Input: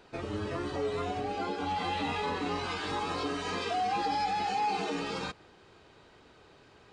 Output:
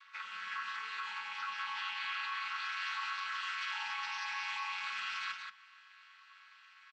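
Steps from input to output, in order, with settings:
channel vocoder with a chord as carrier minor triad, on F#3
elliptic high-pass filter 1,100 Hz, stop band 40 dB
parametric band 2,300 Hz +7 dB 2.3 octaves
brickwall limiter −36 dBFS, peak gain reduction 8.5 dB
single-tap delay 178 ms −5.5 dB
level +5 dB

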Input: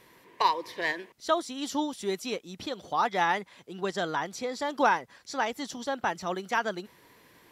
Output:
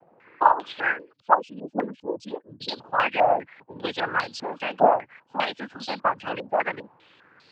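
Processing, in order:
0:00.98–0:02.68: expanding power law on the bin magnitudes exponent 2.7
harmonic generator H 7 −29 dB, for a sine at −10.5 dBFS
cochlear-implant simulation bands 8
low-pass on a step sequencer 5 Hz 710–4,400 Hz
level +1.5 dB

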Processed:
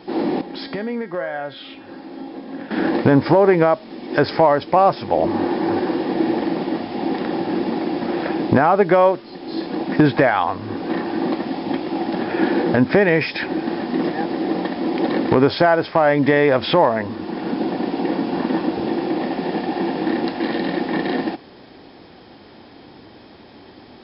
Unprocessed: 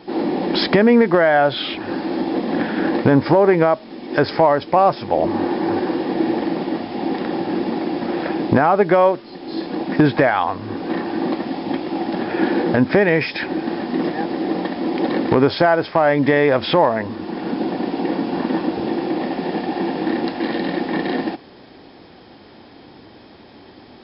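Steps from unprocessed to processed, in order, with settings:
0:00.41–0:02.71: tuned comb filter 270 Hz, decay 0.75 s, mix 80%

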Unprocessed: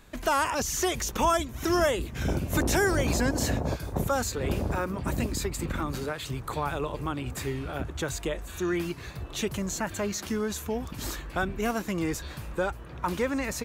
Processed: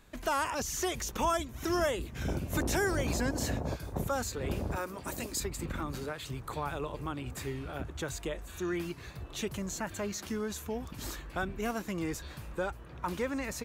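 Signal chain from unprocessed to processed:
0:04.76–0:05.40: bass and treble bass −10 dB, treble +7 dB
level −5.5 dB

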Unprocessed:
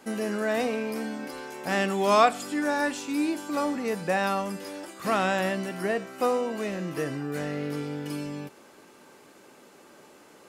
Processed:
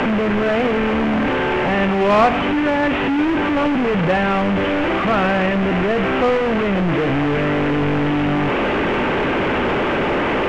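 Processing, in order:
linear delta modulator 16 kbit/s, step −20.5 dBFS
soft clipping −14.5 dBFS, distortion −21 dB
in parallel at −10.5 dB: sample-rate reduction 1,800 Hz, jitter 20%
on the sum: high-frequency loss of the air 130 metres
level +8 dB

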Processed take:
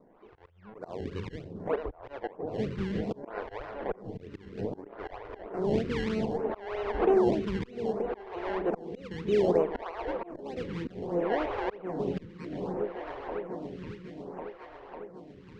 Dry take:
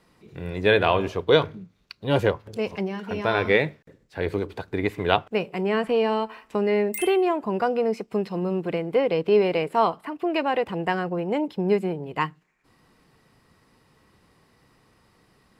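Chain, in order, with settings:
feedback delay that plays each chunk backwards 220 ms, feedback 40%, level −12 dB
low-shelf EQ 210 Hz −10.5 dB
in parallel at +1.5 dB: downward compressor, threshold −32 dBFS, peak gain reduction 17.5 dB
on the sum: gain on a spectral selection 0:00.49–0:00.75, 220–4,400 Hz −28 dB
sample-and-hold swept by an LFO 25×, swing 100% 3.2 Hz
echo whose low-pass opens from repeat to repeat 550 ms, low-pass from 200 Hz, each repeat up 2 octaves, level −6 dB
volume swells 410 ms
head-to-tape spacing loss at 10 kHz 35 dB
phaser with staggered stages 0.63 Hz

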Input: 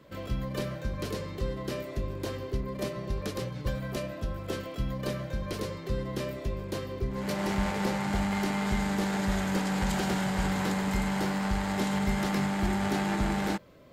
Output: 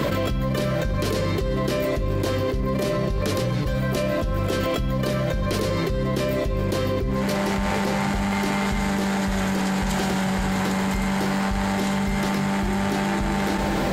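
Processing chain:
on a send at −18.5 dB: convolution reverb RT60 3.4 s, pre-delay 6 ms
on the sum: envelope flattener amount 100%
level +1 dB

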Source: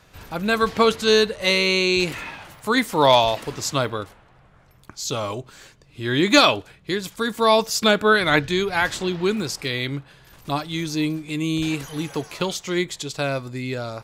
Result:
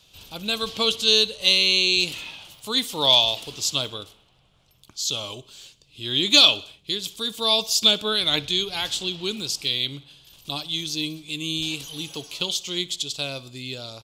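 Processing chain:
high shelf with overshoot 2,400 Hz +9.5 dB, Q 3
on a send: repeating echo 62 ms, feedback 57%, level −21.5 dB
on the sum: level −9 dB

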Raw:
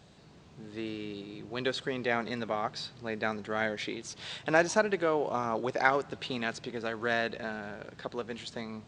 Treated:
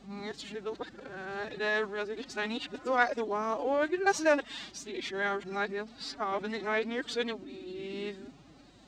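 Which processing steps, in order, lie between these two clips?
played backwards from end to start
phase-vocoder pitch shift with formants kept +10.5 semitones
mains hum 50 Hz, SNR 34 dB

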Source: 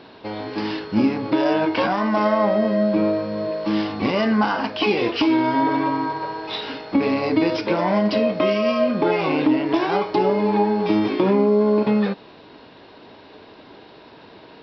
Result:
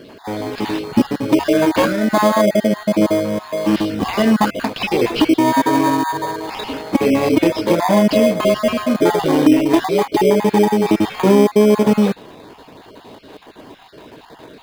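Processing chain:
time-frequency cells dropped at random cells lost 27%
in parallel at −5 dB: decimation without filtering 16×
on the sum: level +3 dB

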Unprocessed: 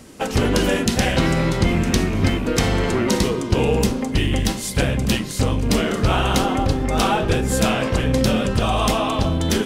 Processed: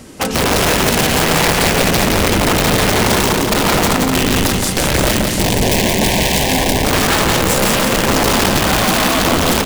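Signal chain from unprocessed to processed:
dynamic equaliser 180 Hz, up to +5 dB, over −34 dBFS, Q 2.4
brickwall limiter −12.5 dBFS, peak gain reduction 8.5 dB
wrap-around overflow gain 15.5 dB
0:05.22–0:06.85: Butterworth band-reject 1,300 Hz, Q 1.9
repeating echo 173 ms, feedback 53%, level −4 dB
level +6 dB

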